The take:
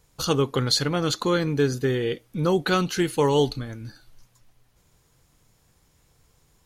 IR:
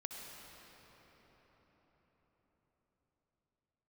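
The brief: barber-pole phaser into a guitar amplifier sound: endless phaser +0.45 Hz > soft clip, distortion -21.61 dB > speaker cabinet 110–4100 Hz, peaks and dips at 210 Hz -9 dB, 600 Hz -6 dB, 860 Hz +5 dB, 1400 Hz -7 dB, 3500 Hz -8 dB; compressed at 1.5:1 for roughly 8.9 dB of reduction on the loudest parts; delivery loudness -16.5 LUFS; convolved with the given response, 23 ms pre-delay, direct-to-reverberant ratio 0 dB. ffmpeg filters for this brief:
-filter_complex "[0:a]acompressor=threshold=-42dB:ratio=1.5,asplit=2[a][b];[1:a]atrim=start_sample=2205,adelay=23[c];[b][c]afir=irnorm=-1:irlink=0,volume=1.5dB[d];[a][d]amix=inputs=2:normalize=0,asplit=2[e][f];[f]afreqshift=0.45[g];[e][g]amix=inputs=2:normalize=1,asoftclip=threshold=-21.5dB,highpass=110,equalizer=f=210:t=q:w=4:g=-9,equalizer=f=600:t=q:w=4:g=-6,equalizer=f=860:t=q:w=4:g=5,equalizer=f=1.4k:t=q:w=4:g=-7,equalizer=f=3.5k:t=q:w=4:g=-8,lowpass=f=4.1k:w=0.5412,lowpass=f=4.1k:w=1.3066,volume=19dB"

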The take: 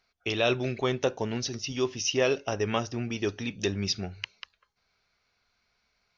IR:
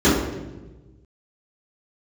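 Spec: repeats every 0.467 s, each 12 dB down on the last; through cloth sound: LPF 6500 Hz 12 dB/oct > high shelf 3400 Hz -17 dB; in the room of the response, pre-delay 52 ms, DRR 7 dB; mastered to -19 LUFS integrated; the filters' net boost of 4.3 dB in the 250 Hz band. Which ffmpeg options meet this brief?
-filter_complex "[0:a]equalizer=f=250:t=o:g=5.5,aecho=1:1:467|934|1401:0.251|0.0628|0.0157,asplit=2[a][b];[1:a]atrim=start_sample=2205,adelay=52[c];[b][c]afir=irnorm=-1:irlink=0,volume=-30.5dB[d];[a][d]amix=inputs=2:normalize=0,lowpass=6.5k,highshelf=f=3.4k:g=-17,volume=5.5dB"

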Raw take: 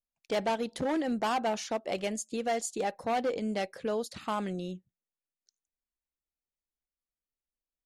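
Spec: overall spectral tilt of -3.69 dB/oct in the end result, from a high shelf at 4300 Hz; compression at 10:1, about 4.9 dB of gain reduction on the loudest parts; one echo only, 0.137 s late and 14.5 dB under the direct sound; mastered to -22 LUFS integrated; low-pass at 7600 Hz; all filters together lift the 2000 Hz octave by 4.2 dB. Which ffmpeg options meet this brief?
-af "lowpass=7.6k,equalizer=f=2k:t=o:g=4.5,highshelf=f=4.3k:g=3.5,acompressor=threshold=-30dB:ratio=10,aecho=1:1:137:0.188,volume=13dB"

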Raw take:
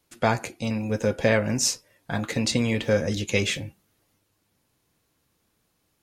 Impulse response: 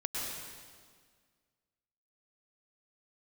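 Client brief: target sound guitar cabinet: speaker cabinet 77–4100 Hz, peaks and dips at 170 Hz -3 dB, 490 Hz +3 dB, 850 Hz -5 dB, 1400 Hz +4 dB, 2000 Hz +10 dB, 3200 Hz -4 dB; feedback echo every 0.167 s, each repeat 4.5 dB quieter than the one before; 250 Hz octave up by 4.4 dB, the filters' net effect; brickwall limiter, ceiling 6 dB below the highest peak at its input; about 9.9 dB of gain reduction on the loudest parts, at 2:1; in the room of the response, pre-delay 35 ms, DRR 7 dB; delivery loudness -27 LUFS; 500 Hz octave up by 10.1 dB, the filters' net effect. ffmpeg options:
-filter_complex "[0:a]equalizer=f=250:t=o:g=4,equalizer=f=500:t=o:g=8.5,acompressor=threshold=-28dB:ratio=2,alimiter=limit=-17dB:level=0:latency=1,aecho=1:1:167|334|501|668|835|1002|1169|1336|1503:0.596|0.357|0.214|0.129|0.0772|0.0463|0.0278|0.0167|0.01,asplit=2[a][b];[1:a]atrim=start_sample=2205,adelay=35[c];[b][c]afir=irnorm=-1:irlink=0,volume=-11dB[d];[a][d]amix=inputs=2:normalize=0,highpass=77,equalizer=f=170:t=q:w=4:g=-3,equalizer=f=490:t=q:w=4:g=3,equalizer=f=850:t=q:w=4:g=-5,equalizer=f=1.4k:t=q:w=4:g=4,equalizer=f=2k:t=q:w=4:g=10,equalizer=f=3.2k:t=q:w=4:g=-4,lowpass=f=4.1k:w=0.5412,lowpass=f=4.1k:w=1.3066,volume=-1dB"

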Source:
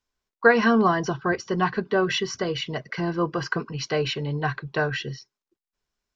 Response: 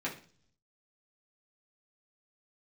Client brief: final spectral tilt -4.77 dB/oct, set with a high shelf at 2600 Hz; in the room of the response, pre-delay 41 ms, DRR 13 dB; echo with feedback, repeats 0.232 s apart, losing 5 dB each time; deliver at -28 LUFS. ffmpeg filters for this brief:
-filter_complex "[0:a]highshelf=f=2.6k:g=3.5,aecho=1:1:232|464|696|928|1160|1392|1624:0.562|0.315|0.176|0.0988|0.0553|0.031|0.0173,asplit=2[a][b];[1:a]atrim=start_sample=2205,adelay=41[c];[b][c]afir=irnorm=-1:irlink=0,volume=-17.5dB[d];[a][d]amix=inputs=2:normalize=0,volume=-5.5dB"

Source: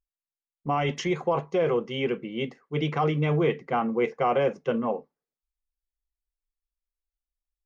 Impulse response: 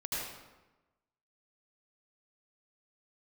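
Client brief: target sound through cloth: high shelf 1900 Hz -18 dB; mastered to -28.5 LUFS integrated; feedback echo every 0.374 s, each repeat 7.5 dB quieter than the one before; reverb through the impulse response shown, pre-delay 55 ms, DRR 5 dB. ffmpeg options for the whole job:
-filter_complex "[0:a]aecho=1:1:374|748|1122|1496|1870:0.422|0.177|0.0744|0.0312|0.0131,asplit=2[a][b];[1:a]atrim=start_sample=2205,adelay=55[c];[b][c]afir=irnorm=-1:irlink=0,volume=-9dB[d];[a][d]amix=inputs=2:normalize=0,highshelf=f=1.9k:g=-18,volume=-2dB"

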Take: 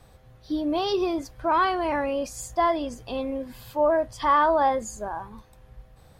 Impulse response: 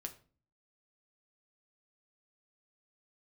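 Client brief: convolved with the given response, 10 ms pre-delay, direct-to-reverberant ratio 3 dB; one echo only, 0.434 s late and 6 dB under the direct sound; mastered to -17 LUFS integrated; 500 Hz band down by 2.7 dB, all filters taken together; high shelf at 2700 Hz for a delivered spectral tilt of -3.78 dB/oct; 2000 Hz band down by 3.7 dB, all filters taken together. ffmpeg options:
-filter_complex "[0:a]equalizer=f=500:t=o:g=-3.5,equalizer=f=2k:t=o:g=-6.5,highshelf=f=2.7k:g=4,aecho=1:1:434:0.501,asplit=2[a][b];[1:a]atrim=start_sample=2205,adelay=10[c];[b][c]afir=irnorm=-1:irlink=0,volume=0dB[d];[a][d]amix=inputs=2:normalize=0,volume=7dB"

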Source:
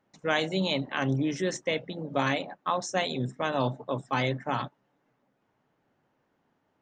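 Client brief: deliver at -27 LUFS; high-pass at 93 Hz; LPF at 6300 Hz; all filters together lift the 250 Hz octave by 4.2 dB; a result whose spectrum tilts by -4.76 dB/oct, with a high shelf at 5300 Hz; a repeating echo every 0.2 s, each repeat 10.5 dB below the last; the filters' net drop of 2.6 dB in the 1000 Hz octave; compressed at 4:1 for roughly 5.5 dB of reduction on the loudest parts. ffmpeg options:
-af "highpass=93,lowpass=6.3k,equalizer=f=250:t=o:g=5.5,equalizer=f=1k:t=o:g=-3.5,highshelf=f=5.3k:g=-6.5,acompressor=threshold=-27dB:ratio=4,aecho=1:1:200|400|600:0.299|0.0896|0.0269,volume=5.5dB"

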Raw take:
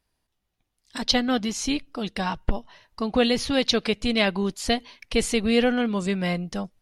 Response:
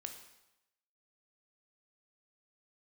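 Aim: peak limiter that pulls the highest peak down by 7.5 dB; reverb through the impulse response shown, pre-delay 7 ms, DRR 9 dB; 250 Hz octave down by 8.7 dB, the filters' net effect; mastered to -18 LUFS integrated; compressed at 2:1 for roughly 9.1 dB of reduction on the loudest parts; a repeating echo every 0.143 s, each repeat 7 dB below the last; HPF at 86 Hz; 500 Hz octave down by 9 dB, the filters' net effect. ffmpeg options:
-filter_complex "[0:a]highpass=86,equalizer=f=250:t=o:g=-8.5,equalizer=f=500:t=o:g=-8,acompressor=threshold=-35dB:ratio=2,alimiter=level_in=0.5dB:limit=-24dB:level=0:latency=1,volume=-0.5dB,aecho=1:1:143|286|429|572|715:0.447|0.201|0.0905|0.0407|0.0183,asplit=2[a][b];[1:a]atrim=start_sample=2205,adelay=7[c];[b][c]afir=irnorm=-1:irlink=0,volume=-5.5dB[d];[a][d]amix=inputs=2:normalize=0,volume=17dB"

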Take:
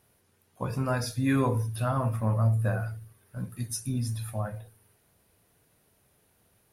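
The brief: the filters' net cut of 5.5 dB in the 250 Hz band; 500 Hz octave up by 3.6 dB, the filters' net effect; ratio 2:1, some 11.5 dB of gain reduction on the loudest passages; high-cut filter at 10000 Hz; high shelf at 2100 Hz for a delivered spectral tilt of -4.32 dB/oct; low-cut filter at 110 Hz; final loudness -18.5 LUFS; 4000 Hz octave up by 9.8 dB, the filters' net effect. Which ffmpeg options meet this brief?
-af "highpass=110,lowpass=10k,equalizer=f=250:t=o:g=-7.5,equalizer=f=500:t=o:g=5.5,highshelf=f=2.1k:g=6.5,equalizer=f=4k:t=o:g=6,acompressor=threshold=-44dB:ratio=2,volume=21.5dB"

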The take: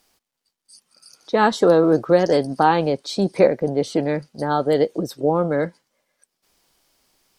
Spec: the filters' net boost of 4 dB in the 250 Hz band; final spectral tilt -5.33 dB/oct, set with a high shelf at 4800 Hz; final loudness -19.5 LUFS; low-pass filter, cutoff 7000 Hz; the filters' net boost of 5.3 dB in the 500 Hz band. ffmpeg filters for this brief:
-af "lowpass=7k,equalizer=f=250:t=o:g=3.5,equalizer=f=500:t=o:g=5,highshelf=f=4.8k:g=8.5,volume=-4.5dB"

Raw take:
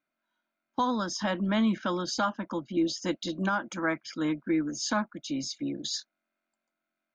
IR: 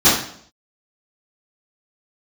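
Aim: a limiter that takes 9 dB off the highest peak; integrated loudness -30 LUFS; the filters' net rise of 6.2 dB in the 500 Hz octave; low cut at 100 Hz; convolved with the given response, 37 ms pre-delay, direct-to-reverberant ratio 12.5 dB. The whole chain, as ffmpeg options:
-filter_complex "[0:a]highpass=100,equalizer=f=500:t=o:g=8.5,alimiter=limit=-22dB:level=0:latency=1,asplit=2[a][b];[1:a]atrim=start_sample=2205,adelay=37[c];[b][c]afir=irnorm=-1:irlink=0,volume=-36.5dB[d];[a][d]amix=inputs=2:normalize=0,volume=1dB"

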